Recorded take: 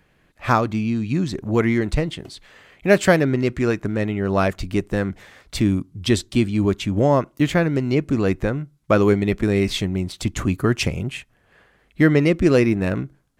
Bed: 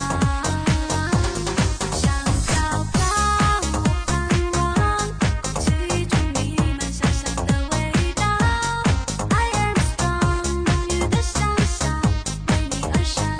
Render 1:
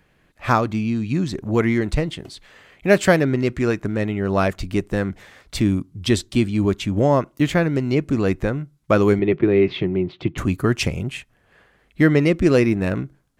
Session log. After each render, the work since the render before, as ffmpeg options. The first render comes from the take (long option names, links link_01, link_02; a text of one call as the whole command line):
ffmpeg -i in.wav -filter_complex "[0:a]asettb=1/sr,asplit=3[link_01][link_02][link_03];[link_01]atrim=end=9.194[link_04];[link_02]atrim=start=9.19:end=10.38,asetpts=PTS-STARTPTS,afade=type=in:duration=0.004:curve=qsin,afade=type=out:start_time=1.186:duration=0.004:curve=qsin,highpass=120,equalizer=frequency=150:width_type=q:width=4:gain=10,equalizer=frequency=220:width_type=q:width=4:gain=-6,equalizer=frequency=360:width_type=q:width=4:gain=10,equalizer=frequency=1600:width_type=q:width=4:gain=-3,lowpass=frequency=3100:width=0.5412,lowpass=frequency=3100:width=1.3066[link_05];[link_03]atrim=start=10.376[link_06];[link_04][link_05]acrossfade=duration=0.004:curve1=hsin:curve2=qsin[link_07];[link_07][link_06]acrossfade=duration=0.004:curve1=qsin:curve2=hsin" out.wav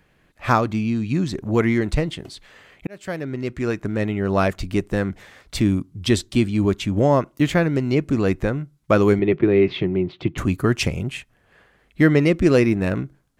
ffmpeg -i in.wav -filter_complex "[0:a]asplit=2[link_01][link_02];[link_01]atrim=end=2.87,asetpts=PTS-STARTPTS,afade=type=out:start_time=2.866:duration=0.004:curve=hsin[link_03];[link_02]atrim=start=2.87,asetpts=PTS-STARTPTS,afade=type=in:duration=1.17[link_04];[link_03][link_04]concat=n=2:v=0:a=1" out.wav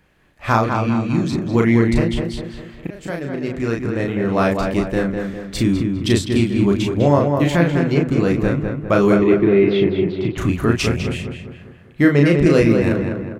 ffmpeg -i in.wav -filter_complex "[0:a]asplit=2[link_01][link_02];[link_02]adelay=35,volume=-3dB[link_03];[link_01][link_03]amix=inputs=2:normalize=0,asplit=2[link_04][link_05];[link_05]adelay=201,lowpass=frequency=2400:poles=1,volume=-4.5dB,asplit=2[link_06][link_07];[link_07]adelay=201,lowpass=frequency=2400:poles=1,volume=0.48,asplit=2[link_08][link_09];[link_09]adelay=201,lowpass=frequency=2400:poles=1,volume=0.48,asplit=2[link_10][link_11];[link_11]adelay=201,lowpass=frequency=2400:poles=1,volume=0.48,asplit=2[link_12][link_13];[link_13]adelay=201,lowpass=frequency=2400:poles=1,volume=0.48,asplit=2[link_14][link_15];[link_15]adelay=201,lowpass=frequency=2400:poles=1,volume=0.48[link_16];[link_06][link_08][link_10][link_12][link_14][link_16]amix=inputs=6:normalize=0[link_17];[link_04][link_17]amix=inputs=2:normalize=0" out.wav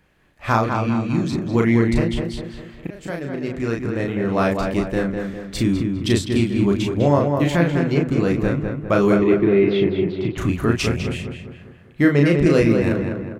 ffmpeg -i in.wav -af "volume=-2dB" out.wav